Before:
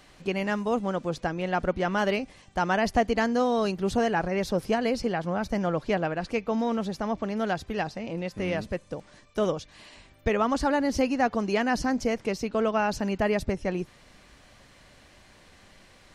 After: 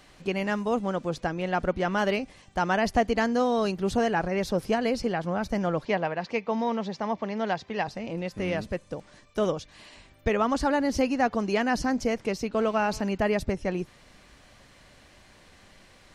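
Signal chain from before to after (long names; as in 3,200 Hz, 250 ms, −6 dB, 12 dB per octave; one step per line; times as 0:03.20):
0:05.85–0:07.88: loudspeaker in its box 160–6,100 Hz, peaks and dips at 300 Hz −7 dB, 950 Hz +5 dB, 1,400 Hz −4 dB, 2,000 Hz +4 dB
0:12.57–0:13.01: phone interference −46 dBFS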